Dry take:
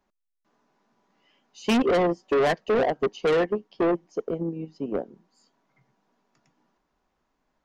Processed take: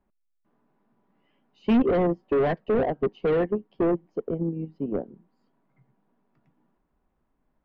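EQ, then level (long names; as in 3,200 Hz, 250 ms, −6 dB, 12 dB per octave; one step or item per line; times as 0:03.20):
high-frequency loss of the air 470 metres
low-shelf EQ 310 Hz +9.5 dB
high-shelf EQ 4,900 Hz +6 dB
−3.0 dB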